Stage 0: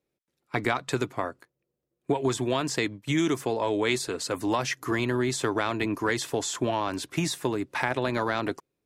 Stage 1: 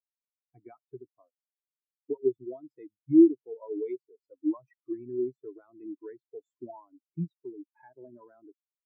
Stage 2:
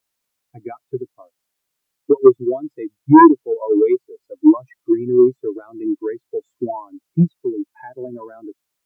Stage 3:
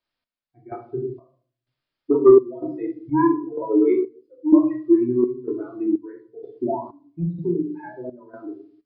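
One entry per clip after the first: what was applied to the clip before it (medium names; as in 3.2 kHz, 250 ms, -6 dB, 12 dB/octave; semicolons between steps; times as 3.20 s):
spectral contrast expander 4:1
sine folder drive 8 dB, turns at -8.5 dBFS; trim +7 dB
simulated room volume 420 m³, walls furnished, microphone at 2.7 m; resampled via 11.025 kHz; trance gate "x..xx..xxx.x" 63 bpm -12 dB; trim -5.5 dB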